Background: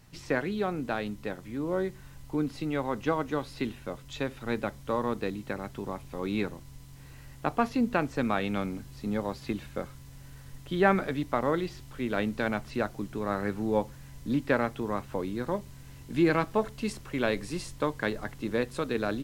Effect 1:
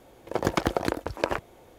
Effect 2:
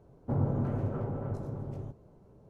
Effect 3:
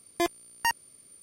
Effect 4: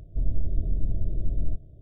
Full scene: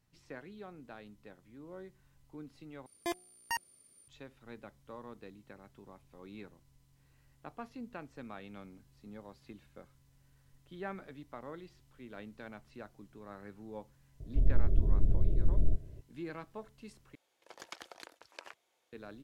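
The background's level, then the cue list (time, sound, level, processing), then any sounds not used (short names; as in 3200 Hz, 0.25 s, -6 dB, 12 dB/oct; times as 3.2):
background -18.5 dB
2.86 replace with 3 -9 dB + de-hum 180.5 Hz, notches 4
14.2 add 4 -1 dB + bell 400 Hz +6 dB 0.3 oct
17.15 replace with 1 -13 dB + band-pass 5000 Hz, Q 0.57
not used: 2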